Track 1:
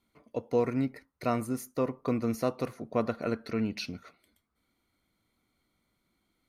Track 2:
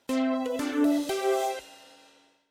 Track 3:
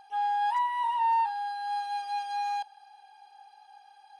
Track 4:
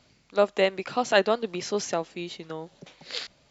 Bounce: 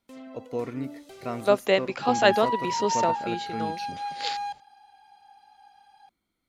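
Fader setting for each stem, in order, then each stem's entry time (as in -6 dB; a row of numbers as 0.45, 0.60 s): -4.0, -17.5, -1.0, +1.0 dB; 0.00, 0.00, 1.90, 1.10 s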